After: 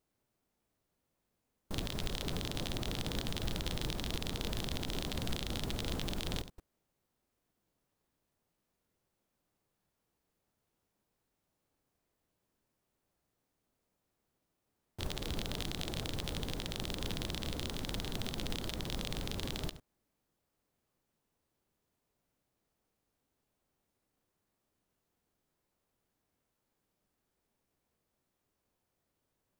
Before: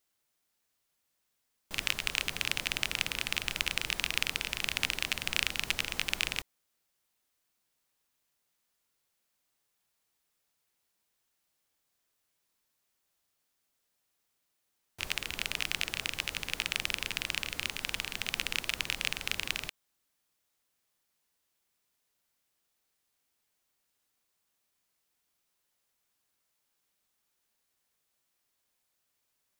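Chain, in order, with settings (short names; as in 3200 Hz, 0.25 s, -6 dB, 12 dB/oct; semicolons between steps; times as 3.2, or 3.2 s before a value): reverse delay 0.1 s, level -13.5 dB; limiter -13 dBFS, peak gain reduction 7.5 dB; formant shift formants +5 st; tilt shelf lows +9.5 dB; short-mantissa float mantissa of 2-bit; gain +1 dB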